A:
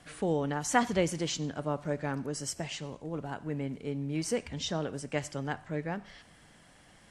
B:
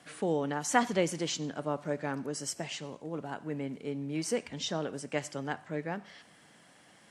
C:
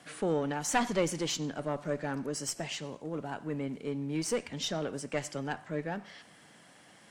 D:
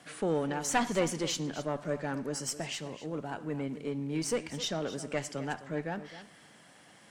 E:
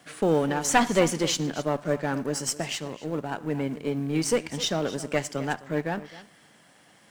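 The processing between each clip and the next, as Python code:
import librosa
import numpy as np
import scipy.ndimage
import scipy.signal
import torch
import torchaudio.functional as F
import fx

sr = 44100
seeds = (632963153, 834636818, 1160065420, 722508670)

y1 = scipy.signal.sosfilt(scipy.signal.butter(2, 170.0, 'highpass', fs=sr, output='sos'), x)
y2 = fx.diode_clip(y1, sr, knee_db=-25.5)
y2 = y2 * librosa.db_to_amplitude(2.0)
y3 = y2 + 10.0 ** (-14.0 / 20.0) * np.pad(y2, (int(260 * sr / 1000.0), 0))[:len(y2)]
y4 = fx.law_mismatch(y3, sr, coded='A')
y4 = y4 * librosa.db_to_amplitude(8.5)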